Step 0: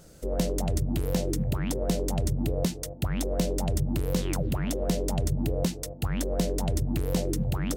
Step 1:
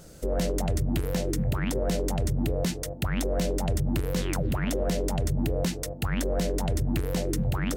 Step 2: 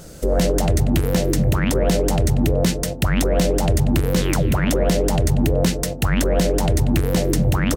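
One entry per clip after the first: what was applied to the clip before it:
dynamic bell 1.7 kHz, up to +6 dB, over -53 dBFS, Q 1.1; peak limiter -21.5 dBFS, peak gain reduction 8.5 dB; trim +3.5 dB
feedback delay 188 ms, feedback 21%, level -11.5 dB; trim +9 dB

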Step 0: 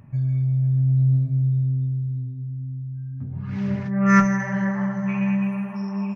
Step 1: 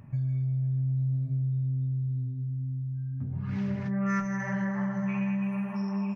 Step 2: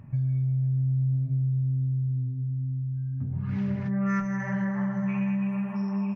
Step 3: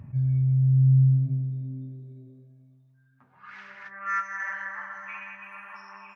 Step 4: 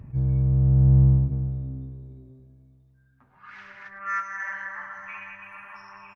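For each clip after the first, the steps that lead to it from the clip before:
compression 4:1, threshold -26 dBFS, peak gain reduction 13.5 dB; trim -1.5 dB
tone controls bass +3 dB, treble -5 dB
high-pass sweep 64 Hz -> 1.4 kHz, 0.21–3.54 s; attacks held to a fixed rise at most 390 dB/s
octave divider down 1 oct, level -6 dB; delay 105 ms -15 dB

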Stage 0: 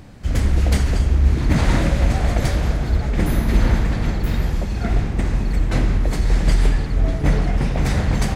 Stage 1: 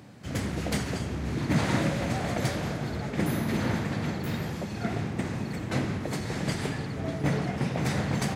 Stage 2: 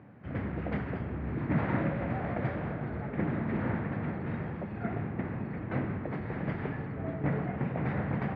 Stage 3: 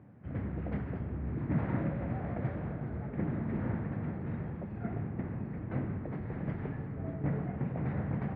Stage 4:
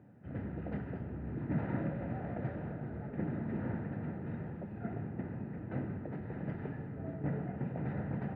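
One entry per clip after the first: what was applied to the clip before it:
high-pass 110 Hz 24 dB/octave; trim -5 dB
low-pass 2.1 kHz 24 dB/octave; trim -3.5 dB
tilt EQ -2 dB/octave; trim -7 dB
comb of notches 1.1 kHz; trim -1.5 dB

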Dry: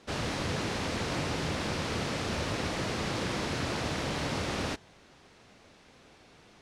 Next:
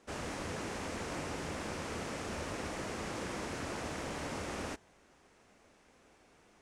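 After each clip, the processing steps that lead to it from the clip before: graphic EQ 125/4000/8000 Hz -7/-8/+4 dB; trim -5.5 dB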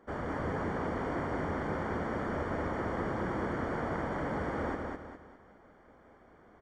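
Savitzky-Golay filter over 41 samples; feedback delay 204 ms, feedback 38%, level -3 dB; trim +4.5 dB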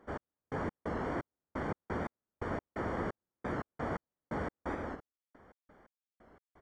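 trance gate "x..x.xx..x." 87 bpm -60 dB; warped record 45 rpm, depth 100 cents; trim -1.5 dB

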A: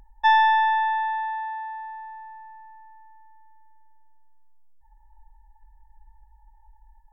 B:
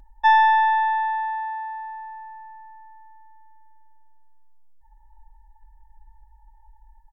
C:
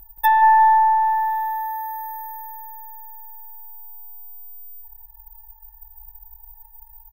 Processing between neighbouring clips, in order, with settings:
comb 3.3 ms, depth 33%
feedback delay 176 ms, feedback 48%, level -3.5 dB; careless resampling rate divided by 3×, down none, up zero stuff; low-pass that closes with the level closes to 1.6 kHz, closed at -7 dBFS

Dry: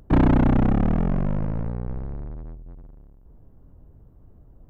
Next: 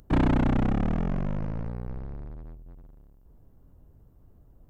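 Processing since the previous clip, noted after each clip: treble shelf 2.6 kHz +10.5 dB; trim -5.5 dB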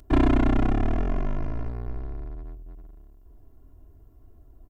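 comb 2.9 ms, depth 88%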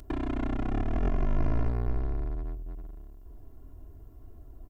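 compressor with a negative ratio -26 dBFS, ratio -1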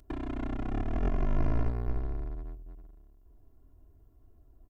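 upward expansion 1.5:1, over -43 dBFS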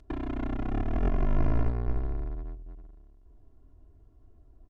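distance through air 66 m; trim +2.5 dB

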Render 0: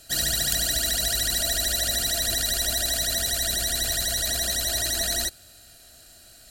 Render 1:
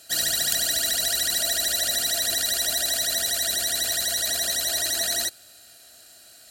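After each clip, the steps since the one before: high-pass 390 Hz 6 dB/octave; trim +1 dB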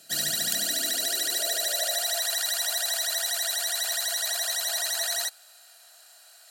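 high-pass sweep 160 Hz -> 880 Hz, 0.30–2.31 s; trim -3.5 dB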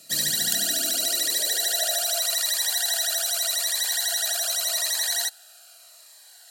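Shepard-style phaser falling 0.84 Hz; trim +3.5 dB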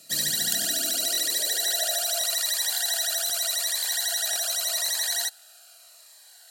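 crackling interface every 0.53 s, samples 1024, repeat, from 0.60 s; trim -1.5 dB

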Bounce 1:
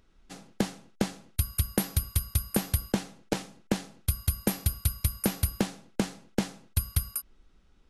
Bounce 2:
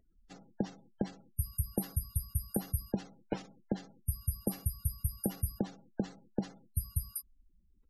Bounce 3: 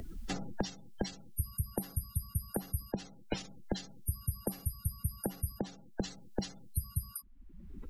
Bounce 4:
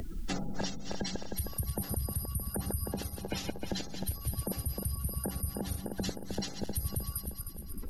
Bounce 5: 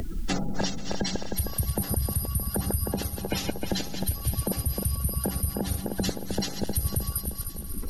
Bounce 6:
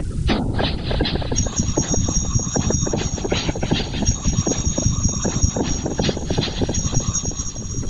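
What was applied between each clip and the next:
spectral gate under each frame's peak -20 dB strong; trim -6 dB
three bands compressed up and down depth 100%; trim -1.5 dB
backward echo that repeats 155 ms, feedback 72%, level -8 dB; peak limiter -28 dBFS, peak gain reduction 9 dB; trim +5 dB
thinning echo 486 ms, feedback 79%, high-pass 800 Hz, level -16.5 dB; trim +7 dB
knee-point frequency compression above 2.1 kHz 1.5:1; whisper effect; trim +8.5 dB

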